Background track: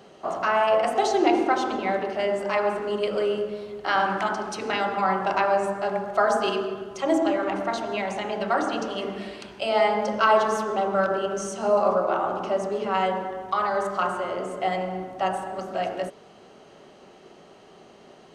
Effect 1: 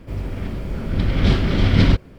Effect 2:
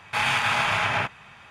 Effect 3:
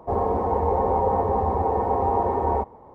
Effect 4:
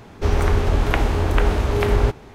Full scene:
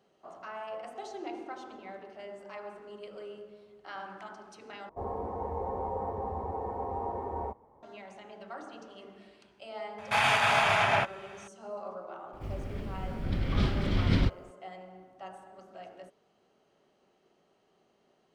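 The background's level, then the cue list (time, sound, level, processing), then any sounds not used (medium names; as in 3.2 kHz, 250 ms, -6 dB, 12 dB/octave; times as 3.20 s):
background track -19.5 dB
4.89 s: replace with 3 -13 dB
9.98 s: add 2 -3 dB + peaking EQ 680 Hz +8.5 dB 0.49 oct
12.33 s: add 1 -11 dB
not used: 4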